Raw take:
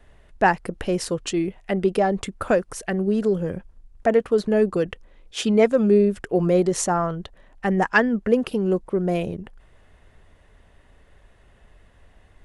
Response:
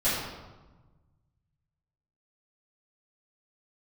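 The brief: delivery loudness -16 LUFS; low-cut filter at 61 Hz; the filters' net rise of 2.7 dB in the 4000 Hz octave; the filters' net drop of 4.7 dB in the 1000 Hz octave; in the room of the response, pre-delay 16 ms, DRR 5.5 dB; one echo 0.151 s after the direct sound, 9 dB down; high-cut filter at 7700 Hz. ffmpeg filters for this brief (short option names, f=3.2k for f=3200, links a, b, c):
-filter_complex "[0:a]highpass=61,lowpass=7.7k,equalizer=f=1k:t=o:g=-7,equalizer=f=4k:t=o:g=4.5,aecho=1:1:151:0.355,asplit=2[a][b];[1:a]atrim=start_sample=2205,adelay=16[c];[b][c]afir=irnorm=-1:irlink=0,volume=-18dB[d];[a][d]amix=inputs=2:normalize=0,volume=5dB"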